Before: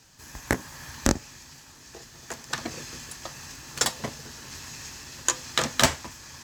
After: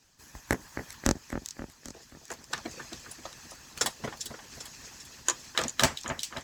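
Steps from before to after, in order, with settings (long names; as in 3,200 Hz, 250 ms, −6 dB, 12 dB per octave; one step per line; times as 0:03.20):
echo with a time of its own for lows and highs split 2,800 Hz, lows 265 ms, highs 397 ms, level −9 dB
harmonic and percussive parts rebalanced harmonic −14 dB
level −3.5 dB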